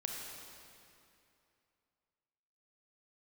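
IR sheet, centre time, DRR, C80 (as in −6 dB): 114 ms, −0.5 dB, 1.5 dB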